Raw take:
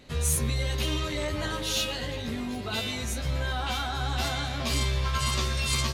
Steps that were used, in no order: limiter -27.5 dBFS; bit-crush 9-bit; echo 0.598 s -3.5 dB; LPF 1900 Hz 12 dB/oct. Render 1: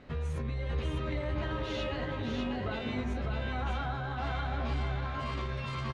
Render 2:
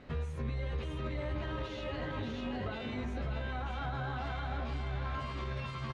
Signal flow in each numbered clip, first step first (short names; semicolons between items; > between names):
bit-crush > LPF > limiter > echo; echo > limiter > bit-crush > LPF